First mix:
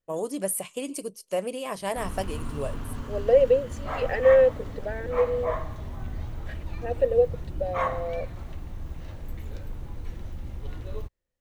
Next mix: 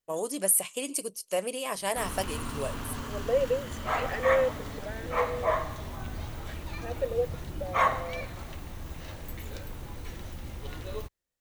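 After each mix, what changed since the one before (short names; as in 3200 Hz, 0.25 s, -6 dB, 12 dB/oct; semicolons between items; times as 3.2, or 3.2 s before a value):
second voice -6.0 dB; background +4.0 dB; master: add tilt +2 dB/oct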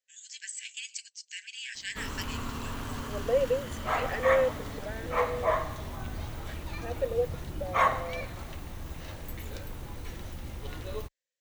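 first voice: add brick-wall FIR band-pass 1500–8100 Hz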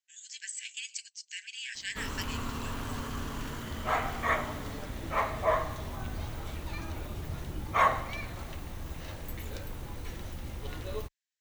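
second voice: muted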